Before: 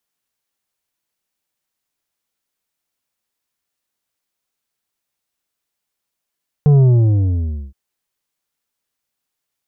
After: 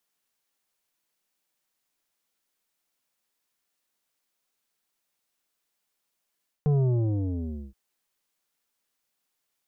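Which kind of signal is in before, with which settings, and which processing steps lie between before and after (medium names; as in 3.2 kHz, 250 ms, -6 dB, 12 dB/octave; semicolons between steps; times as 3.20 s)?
sub drop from 150 Hz, over 1.07 s, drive 7.5 dB, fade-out 0.95 s, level -8 dB
reverse; compression 6:1, threshold -19 dBFS; reverse; peaking EQ 80 Hz -13 dB 0.94 oct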